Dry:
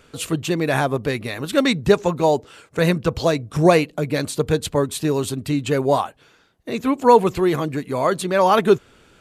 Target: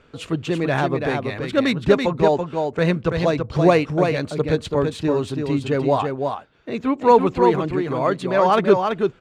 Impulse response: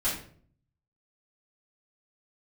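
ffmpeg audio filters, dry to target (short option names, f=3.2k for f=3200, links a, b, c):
-af "adynamicsmooth=sensitivity=0.5:basefreq=3.9k,aecho=1:1:333:0.562,volume=-1dB"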